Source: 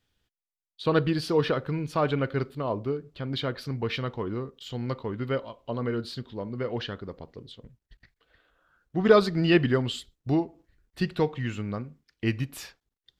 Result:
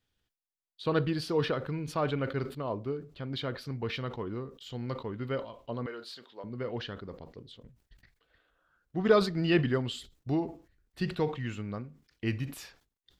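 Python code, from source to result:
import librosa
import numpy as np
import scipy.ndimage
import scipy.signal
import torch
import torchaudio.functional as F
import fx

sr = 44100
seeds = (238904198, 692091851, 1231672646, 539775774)

y = fx.highpass(x, sr, hz=560.0, slope=12, at=(5.86, 6.44))
y = fx.sustainer(y, sr, db_per_s=140.0)
y = y * librosa.db_to_amplitude(-5.0)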